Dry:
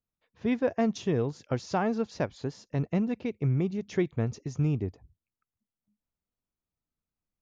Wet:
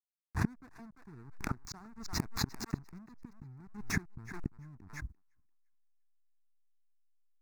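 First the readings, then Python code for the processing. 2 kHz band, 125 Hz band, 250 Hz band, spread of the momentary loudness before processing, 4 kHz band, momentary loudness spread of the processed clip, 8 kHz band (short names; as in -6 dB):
-1.5 dB, -10.5 dB, -12.0 dB, 6 LU, +1.5 dB, 17 LU, n/a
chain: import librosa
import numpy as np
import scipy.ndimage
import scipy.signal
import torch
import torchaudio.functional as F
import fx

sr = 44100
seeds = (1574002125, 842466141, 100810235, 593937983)

p1 = (np.mod(10.0 ** (24.0 / 20.0) * x + 1.0, 2.0) - 1.0) / 10.0 ** (24.0 / 20.0)
p2 = x + F.gain(torch.from_numpy(p1), -6.0).numpy()
p3 = fx.gate_flip(p2, sr, shuts_db=-29.0, range_db=-32)
p4 = fx.backlash(p3, sr, play_db=-51.5)
p5 = fx.fixed_phaser(p4, sr, hz=1300.0, stages=4)
p6 = p5 + fx.echo_thinned(p5, sr, ms=344, feedback_pct=37, hz=760.0, wet_db=-17, dry=0)
p7 = fx.pre_swell(p6, sr, db_per_s=79.0)
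y = F.gain(torch.from_numpy(p7), 12.0).numpy()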